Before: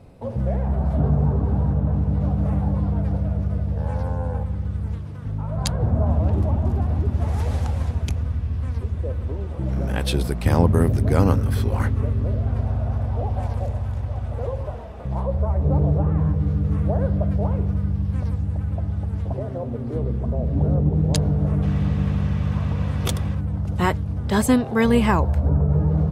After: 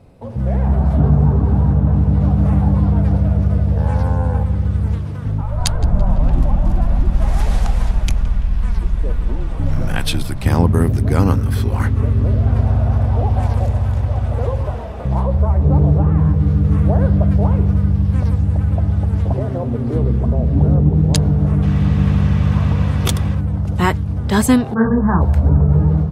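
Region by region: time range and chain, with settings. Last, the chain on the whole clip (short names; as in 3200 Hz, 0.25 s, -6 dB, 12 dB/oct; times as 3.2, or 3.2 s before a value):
5.41–10.42 bell 470 Hz -10 dB 0.7 oct + frequency shift -45 Hz + darkening echo 0.168 s, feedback 71%, low-pass 3200 Hz, level -16.5 dB
24.74–25.22 steep low-pass 1700 Hz 96 dB/oct + bell 180 Hz +6.5 dB 0.39 oct + detuned doubles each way 52 cents
whole clip: dynamic EQ 560 Hz, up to -5 dB, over -37 dBFS, Q 2; AGC gain up to 9 dB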